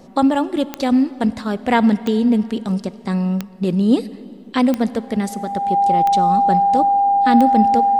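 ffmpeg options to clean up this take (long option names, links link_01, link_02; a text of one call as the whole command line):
ffmpeg -i in.wav -af "adeclick=threshold=4,bandreject=frequency=800:width=30" out.wav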